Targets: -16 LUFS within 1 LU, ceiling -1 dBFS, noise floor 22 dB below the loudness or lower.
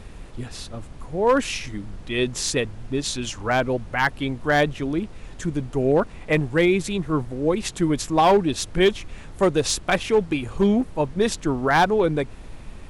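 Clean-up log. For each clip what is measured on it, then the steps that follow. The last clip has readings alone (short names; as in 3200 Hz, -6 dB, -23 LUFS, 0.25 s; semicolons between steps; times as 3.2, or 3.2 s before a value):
clipped 0.5%; flat tops at -11.0 dBFS; noise floor -40 dBFS; noise floor target -45 dBFS; loudness -22.5 LUFS; peak -11.0 dBFS; loudness target -16.0 LUFS
-> clip repair -11 dBFS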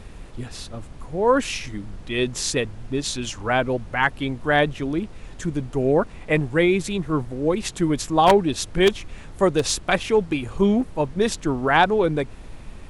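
clipped 0.0%; noise floor -40 dBFS; noise floor target -44 dBFS
-> noise print and reduce 6 dB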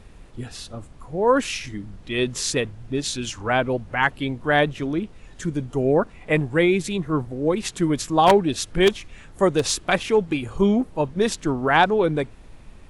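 noise floor -46 dBFS; loudness -22.0 LUFS; peak -2.0 dBFS; loudness target -16.0 LUFS
-> gain +6 dB; limiter -1 dBFS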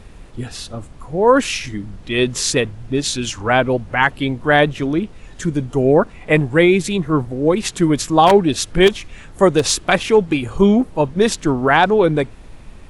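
loudness -16.5 LUFS; peak -1.0 dBFS; noise floor -40 dBFS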